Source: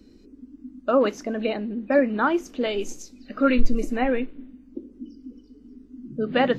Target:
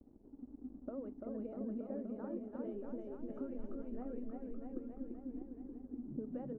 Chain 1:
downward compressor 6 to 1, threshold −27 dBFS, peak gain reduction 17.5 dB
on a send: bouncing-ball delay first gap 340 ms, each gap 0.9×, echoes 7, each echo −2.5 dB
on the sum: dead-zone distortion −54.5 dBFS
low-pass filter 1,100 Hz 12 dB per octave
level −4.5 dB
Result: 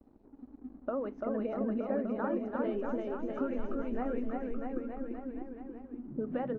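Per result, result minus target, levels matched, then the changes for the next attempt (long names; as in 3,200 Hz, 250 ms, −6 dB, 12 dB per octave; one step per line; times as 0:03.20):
downward compressor: peak gain reduction −8 dB; 1,000 Hz band +7.5 dB
change: downward compressor 6 to 1, threshold −36.5 dBFS, peak gain reduction 25.5 dB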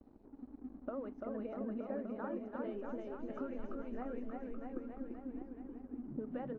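1,000 Hz band +7.0 dB
change: low-pass filter 500 Hz 12 dB per octave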